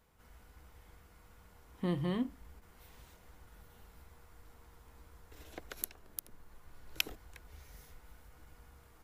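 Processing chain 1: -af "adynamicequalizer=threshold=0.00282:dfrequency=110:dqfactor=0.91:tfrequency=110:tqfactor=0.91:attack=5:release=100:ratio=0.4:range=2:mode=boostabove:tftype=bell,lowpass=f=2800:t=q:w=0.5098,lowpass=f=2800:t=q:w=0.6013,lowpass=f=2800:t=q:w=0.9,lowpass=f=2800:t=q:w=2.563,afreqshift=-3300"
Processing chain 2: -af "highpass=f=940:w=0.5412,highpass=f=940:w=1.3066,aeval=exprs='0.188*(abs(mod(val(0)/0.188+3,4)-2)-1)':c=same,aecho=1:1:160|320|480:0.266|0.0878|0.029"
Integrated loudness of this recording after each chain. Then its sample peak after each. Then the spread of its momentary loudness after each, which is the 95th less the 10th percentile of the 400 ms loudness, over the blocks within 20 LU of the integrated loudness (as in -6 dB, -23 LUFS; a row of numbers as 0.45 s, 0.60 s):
-37.0 LUFS, -46.0 LUFS; -17.5 dBFS, -14.5 dBFS; 23 LU, 23 LU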